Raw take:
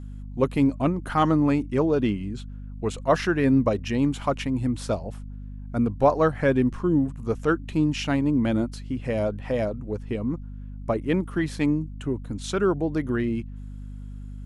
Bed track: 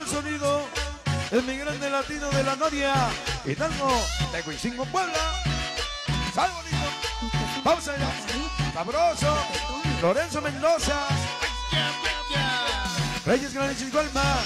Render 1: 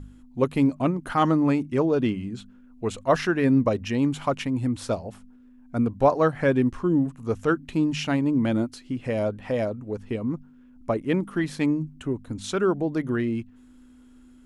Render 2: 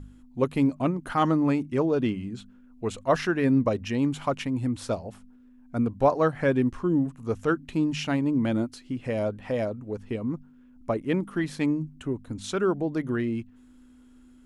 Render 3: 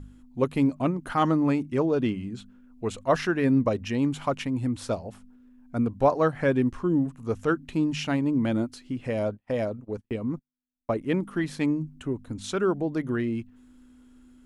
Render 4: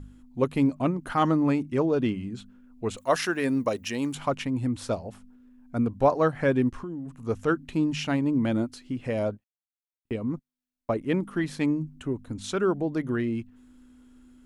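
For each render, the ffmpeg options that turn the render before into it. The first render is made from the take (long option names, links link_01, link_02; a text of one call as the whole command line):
ffmpeg -i in.wav -af "bandreject=frequency=50:width_type=h:width=4,bandreject=frequency=100:width_type=h:width=4,bandreject=frequency=150:width_type=h:width=4,bandreject=frequency=200:width_type=h:width=4" out.wav
ffmpeg -i in.wav -af "volume=-2dB" out.wav
ffmpeg -i in.wav -filter_complex "[0:a]asettb=1/sr,asplit=3[link_01][link_02][link_03];[link_01]atrim=end=9.304[link_04];[link_02]atrim=start=9.3:end=10.92,asetpts=PTS-STARTPTS,afade=type=in:duration=0.004:curve=qsin,afade=type=out:start_time=1.616:duration=0.004:curve=qsin,agate=range=-40dB:threshold=-40dB:ratio=16:release=100:detection=peak[link_05];[link_03]atrim=start=10.916[link_06];[link_04][link_05]acrossfade=duration=0.004:curve1=hsin:curve2=qsin[link_07];[link_07][link_06]acrossfade=duration=0.004:curve1=qsin:curve2=hsin" out.wav
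ffmpeg -i in.wav -filter_complex "[0:a]asettb=1/sr,asplit=3[link_01][link_02][link_03];[link_01]atrim=end=2.974[link_04];[link_02]atrim=start=2.97:end=4.15,asetpts=PTS-STARTPTS,afade=type=in:duration=0.004:curve=qsin,afade=type=out:start_time=1.176:duration=0.004:curve=qsin,aemphasis=mode=production:type=bsi[link_05];[link_03]atrim=start=4.146[link_06];[link_04][link_05]acrossfade=duration=0.004:curve1=hsin:curve2=qsin[link_07];[link_07][link_06]acrossfade=duration=0.004:curve1=qsin:curve2=hsin,asplit=3[link_08][link_09][link_10];[link_08]afade=type=out:start_time=6.69:duration=0.02[link_11];[link_09]acompressor=threshold=-31dB:ratio=16:attack=3.2:release=140:knee=1:detection=peak,afade=type=in:start_time=6.69:duration=0.02,afade=type=out:start_time=7.26:duration=0.02[link_12];[link_10]afade=type=in:start_time=7.26:duration=0.02[link_13];[link_11][link_12][link_13]amix=inputs=3:normalize=0,asplit=3[link_14][link_15][link_16];[link_14]atrim=end=9.44,asetpts=PTS-STARTPTS,afade=type=out:start_time=9.436:duration=0.004:curve=hsin[link_17];[link_15]atrim=start=9.44:end=10.05,asetpts=PTS-STARTPTS,volume=0[link_18];[link_16]atrim=start=10.05,asetpts=PTS-STARTPTS,afade=type=in:duration=0.004:curve=hsin[link_19];[link_17][link_18][link_19]concat=n=3:v=0:a=1" out.wav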